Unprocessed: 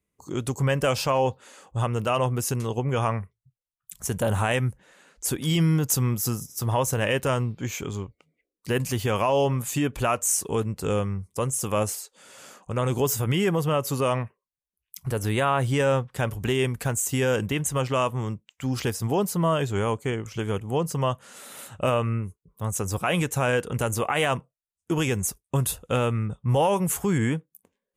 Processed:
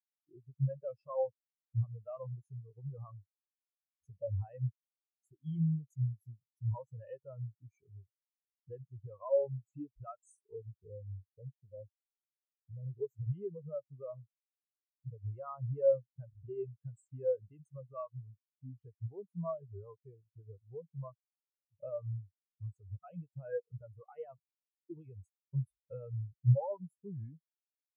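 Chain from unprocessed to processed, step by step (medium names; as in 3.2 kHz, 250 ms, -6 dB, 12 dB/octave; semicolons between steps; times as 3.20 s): 10.56–12.97 s: Gaussian low-pass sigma 11 samples; compression 2:1, threshold -35 dBFS, peak gain reduction 9.5 dB; dynamic bell 220 Hz, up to -6 dB, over -44 dBFS, Q 0.75; spectral contrast expander 4:1; trim +1 dB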